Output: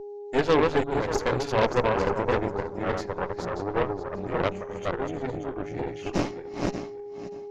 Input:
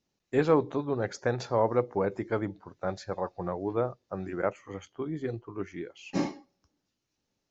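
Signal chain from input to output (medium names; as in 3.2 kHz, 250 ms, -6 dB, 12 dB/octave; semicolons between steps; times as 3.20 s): backward echo that repeats 292 ms, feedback 47%, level -2 dB; whistle 410 Hz -36 dBFS; Chebyshev shaper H 8 -14 dB, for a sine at -9.5 dBFS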